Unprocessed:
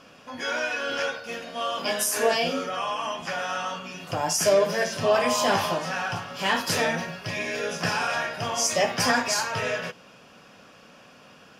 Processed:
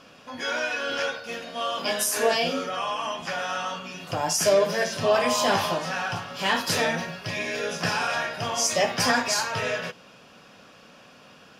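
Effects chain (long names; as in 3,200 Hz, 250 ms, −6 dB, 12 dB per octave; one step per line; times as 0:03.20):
parametric band 3,900 Hz +3.5 dB 0.39 octaves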